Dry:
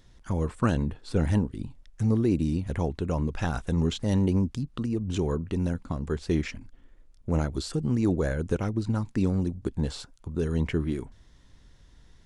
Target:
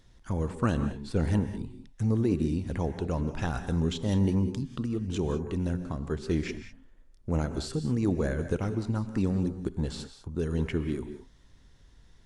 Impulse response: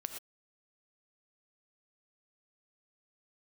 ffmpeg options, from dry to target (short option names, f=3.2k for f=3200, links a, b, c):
-filter_complex "[0:a]asplit=2[a][b];[1:a]atrim=start_sample=2205,asetrate=26901,aresample=44100[c];[b][c]afir=irnorm=-1:irlink=0,volume=0dB[d];[a][d]amix=inputs=2:normalize=0,volume=-8.5dB"